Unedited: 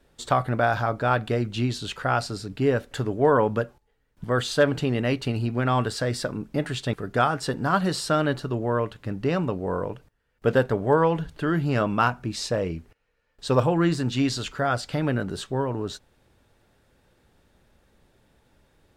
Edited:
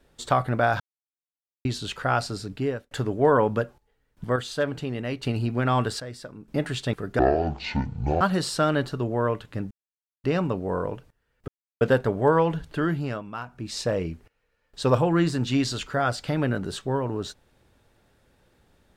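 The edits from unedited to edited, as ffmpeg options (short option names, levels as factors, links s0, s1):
-filter_complex "[0:a]asplit=14[s0][s1][s2][s3][s4][s5][s6][s7][s8][s9][s10][s11][s12][s13];[s0]atrim=end=0.8,asetpts=PTS-STARTPTS,afade=t=out:st=0.796:d=0.004:c=hsin[s14];[s1]atrim=start=0.8:end=1.65,asetpts=PTS-STARTPTS,volume=0[s15];[s2]atrim=start=1.65:end=2.91,asetpts=PTS-STARTPTS,afade=t=in:d=0.004:c=hsin,afade=t=out:st=0.84:d=0.42[s16];[s3]atrim=start=2.91:end=4.362,asetpts=PTS-STARTPTS,afade=t=in:d=0.004:c=hsin[s17];[s4]atrim=start=4.358:end=5.232,asetpts=PTS-STARTPTS,volume=0.501[s18];[s5]atrim=start=5.228:end=6.002[s19];[s6]atrim=start=5.998:end=6.482,asetpts=PTS-STARTPTS,volume=0.266[s20];[s7]atrim=start=6.478:end=7.194[s21];[s8]atrim=start=7.19:end=7.72,asetpts=PTS-STARTPTS,asetrate=22932,aresample=44100,atrim=end_sample=44948,asetpts=PTS-STARTPTS[s22];[s9]atrim=start=7.716:end=9.22,asetpts=PTS-STARTPTS,afade=t=out:st=1.5:d=0.004:c=hsin,apad=pad_dur=0.53[s23];[s10]atrim=start=9.22:end=10.46,asetpts=PTS-STARTPTS,afade=t=in:d=0.004:c=hsin,afade=t=out:st=1.236:d=0.004:c=hsin,apad=pad_dur=0.33[s24];[s11]atrim=start=10.46:end=11.88,asetpts=PTS-STARTPTS,afade=t=in:d=0.004:c=hsin,afade=t=out:st=1.01:d=0.41:silence=0.211349[s25];[s12]atrim=start=11.88:end=12.09,asetpts=PTS-STARTPTS,volume=0.211[s26];[s13]atrim=start=12.09,asetpts=PTS-STARTPTS,afade=t=in:d=0.41:silence=0.211349[s27];[s14][s15][s16][s17]concat=n=4:v=0:a=1[s28];[s28][s18]acrossfade=d=0.004:c1=hsin:c2=hsin[s29];[s29][s19]acrossfade=d=0.004:c1=hsin:c2=hsin[s30];[s30][s20]acrossfade=d=0.004:c1=hsin:c2=hsin[s31];[s31][s21]acrossfade=d=0.004:c1=hsin:c2=hsin[s32];[s32][s22]acrossfade=d=0.004:c1=hsin:c2=hsin[s33];[s23][s24][s25][s26][s27]concat=n=5:v=0:a=1[s34];[s33][s34]acrossfade=d=0.004:c1=hsin:c2=hsin"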